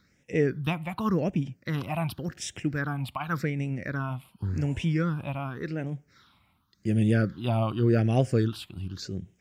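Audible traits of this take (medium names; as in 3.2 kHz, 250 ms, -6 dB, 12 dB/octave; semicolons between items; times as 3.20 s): phasing stages 6, 0.89 Hz, lowest notch 430–1200 Hz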